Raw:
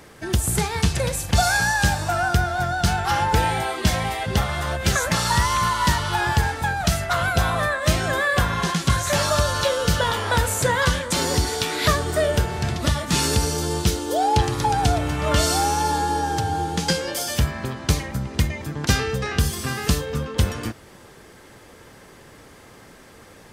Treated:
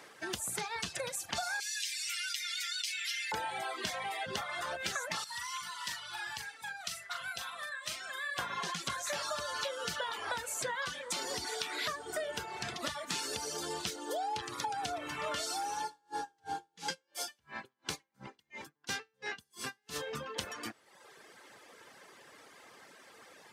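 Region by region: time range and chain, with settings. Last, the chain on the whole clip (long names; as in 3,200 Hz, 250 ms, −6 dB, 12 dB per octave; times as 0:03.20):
0:01.60–0:03.32: elliptic high-pass filter 2,100 Hz, stop band 60 dB + comb filter 7.2 ms, depth 81% + envelope flattener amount 70%
0:05.24–0:08.39: guitar amp tone stack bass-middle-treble 5-5-5 + notch filter 6,600 Hz, Q 27 + double-tracking delay 40 ms −6.5 dB
0:15.85–0:19.96: notch comb filter 620 Hz + tremolo with a sine in dB 2.9 Hz, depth 34 dB
whole clip: meter weighting curve A; reverb reduction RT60 0.94 s; downward compressor, threshold −29 dBFS; level −5 dB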